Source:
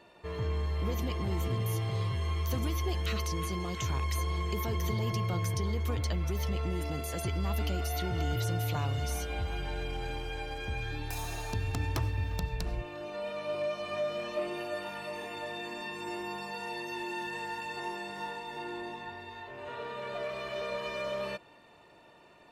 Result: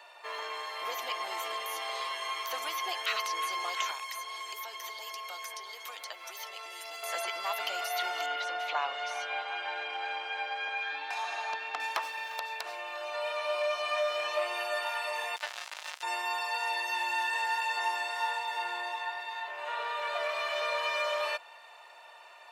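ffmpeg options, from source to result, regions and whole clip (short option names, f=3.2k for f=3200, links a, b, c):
-filter_complex "[0:a]asettb=1/sr,asplit=3[a][b][c];[a]atrim=end=3.914[d];[b]atrim=start=3.91:end=7.03,asetpts=PTS-STARTPTS,afade=t=in:d=0.004:c=qsin,afade=t=out:st=3.116:d=0.004:c=qsin,highpass=f=230:w=0.5412,highpass=f=230:w=1.3066,acrossover=split=2500|5300[e][f][g];[e]acompressor=threshold=-47dB:ratio=4[h];[f]acompressor=threshold=-54dB:ratio=4[i];[g]acompressor=threshold=-52dB:ratio=4[j];[h][i][j]amix=inputs=3:normalize=0[k];[c]atrim=start=7.026[l];[d][k]acrossfade=d=0.004:c1=hsin:c2=qsin[m];[m][l]acrossfade=d=0.004:c1=qsin:c2=hsin,asettb=1/sr,asplit=3[n][o][p];[n]atrim=end=8.264[q];[o]atrim=start=8.26:end=11.8,asetpts=PTS-STARTPTS,afade=t=in:d=0.004:c=qsin,afade=t=out:st=3.536:d=0.004:c=qsin,lowpass=3.1k,lowshelf=f=140:t=q:w=1.5:g=-7.5[r];[p]atrim=start=11.796[s];[q][r]acrossfade=d=0.004:c1=hsin:c2=qsin[t];[t][s]acrossfade=d=0.004:c1=qsin:c2=hsin,asettb=1/sr,asplit=3[u][v][w];[u]atrim=end=15.364[x];[v]atrim=start=15.36:end=16.03,asetpts=PTS-STARTPTS,afade=t=in:d=0.004:c=qsin,afade=t=out:st=0.666:d=0.004:c=qsin,aecho=1:1:5.2:0.4,atrim=end_sample=29547,acrusher=bits=4:mix=0:aa=0.5[y];[w]atrim=start=16.026[z];[x][y]acrossfade=d=0.004:c1=hsin:c2=qsin[aa];[aa][z]acrossfade=d=0.004:c1=qsin:c2=hsin,highpass=f=700:w=0.5412,highpass=f=700:w=1.3066,acrossover=split=3800[ab][ac];[ac]acompressor=threshold=-48dB:ratio=4:attack=1:release=60[ad];[ab][ad]amix=inputs=2:normalize=0,volume=8dB"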